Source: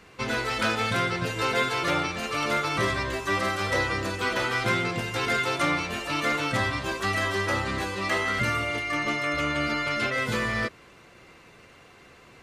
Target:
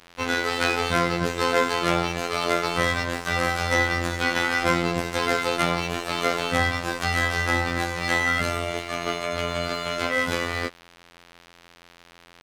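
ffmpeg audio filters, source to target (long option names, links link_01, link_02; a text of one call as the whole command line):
ffmpeg -i in.wav -af "afftfilt=real='hypot(re,im)*cos(PI*b)':imag='0':win_size=2048:overlap=0.75,aeval=exprs='sgn(val(0))*max(abs(val(0))-0.00316,0)':channel_layout=same,volume=7.5dB" out.wav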